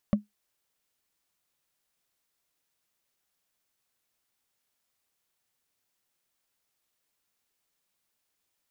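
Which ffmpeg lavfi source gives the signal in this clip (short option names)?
-f lavfi -i "aevalsrc='0.178*pow(10,-3*t/0.15)*sin(2*PI*208*t)+0.075*pow(10,-3*t/0.044)*sin(2*PI*573.5*t)+0.0316*pow(10,-3*t/0.02)*sin(2*PI*1124*t)+0.0133*pow(10,-3*t/0.011)*sin(2*PI*1858.1*t)+0.00562*pow(10,-3*t/0.007)*sin(2*PI*2774.7*t)':d=0.45:s=44100"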